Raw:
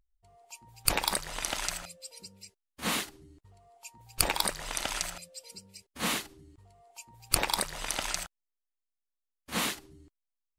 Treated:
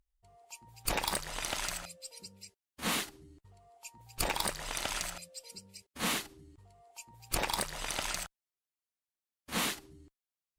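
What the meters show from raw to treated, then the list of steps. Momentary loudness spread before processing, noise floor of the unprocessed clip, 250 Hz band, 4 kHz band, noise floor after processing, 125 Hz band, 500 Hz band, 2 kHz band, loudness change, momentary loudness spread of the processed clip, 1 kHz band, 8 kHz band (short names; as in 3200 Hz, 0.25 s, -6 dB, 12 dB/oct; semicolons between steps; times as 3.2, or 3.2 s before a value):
22 LU, under -85 dBFS, -2.0 dB, -3.5 dB, under -85 dBFS, -2.0 dB, -1.5 dB, -2.5 dB, -4.0 dB, 18 LU, -2.5 dB, -4.0 dB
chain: tube stage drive 21 dB, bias 0.35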